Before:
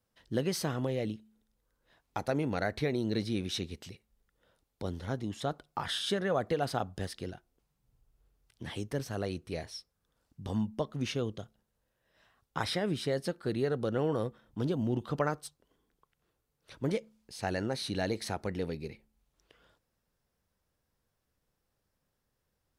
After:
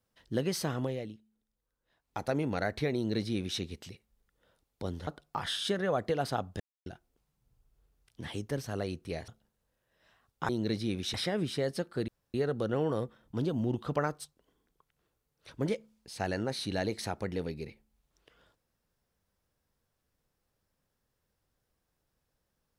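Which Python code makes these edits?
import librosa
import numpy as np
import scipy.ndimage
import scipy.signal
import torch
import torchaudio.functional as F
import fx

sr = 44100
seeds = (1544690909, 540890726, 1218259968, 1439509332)

y = fx.edit(x, sr, fx.fade_down_up(start_s=0.83, length_s=1.42, db=-8.5, fade_s=0.25),
    fx.duplicate(start_s=2.95, length_s=0.65, to_s=12.63),
    fx.cut(start_s=5.07, length_s=0.42),
    fx.silence(start_s=7.02, length_s=0.26),
    fx.cut(start_s=9.7, length_s=1.72),
    fx.insert_room_tone(at_s=13.57, length_s=0.26), tone=tone)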